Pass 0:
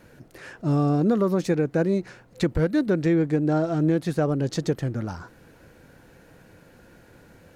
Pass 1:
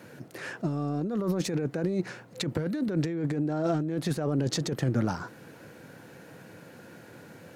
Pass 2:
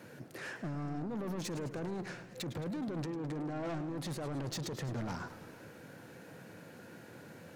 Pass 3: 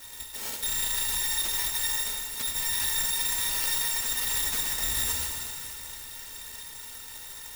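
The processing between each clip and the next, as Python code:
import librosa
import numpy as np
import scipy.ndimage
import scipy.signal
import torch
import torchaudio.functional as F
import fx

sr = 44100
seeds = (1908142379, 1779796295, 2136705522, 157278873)

y1 = scipy.signal.sosfilt(scipy.signal.butter(4, 110.0, 'highpass', fs=sr, output='sos'), x)
y1 = fx.over_compress(y1, sr, threshold_db=-27.0, ratio=-1.0)
y1 = F.gain(torch.from_numpy(y1), -1.0).numpy()
y2 = 10.0 ** (-32.0 / 20.0) * np.tanh(y1 / 10.0 ** (-32.0 / 20.0))
y2 = fx.echo_warbled(y2, sr, ms=106, feedback_pct=61, rate_hz=2.8, cents=181, wet_db=-13.0)
y2 = F.gain(torch.from_numpy(y2), -3.5).numpy()
y3 = fx.bit_reversed(y2, sr, seeds[0], block=256)
y3 = (np.kron(y3[::6], np.eye(6)[0]) * 6)[:len(y3)]
y3 = fx.rev_shimmer(y3, sr, seeds[1], rt60_s=2.7, semitones=7, shimmer_db=-8, drr_db=2.0)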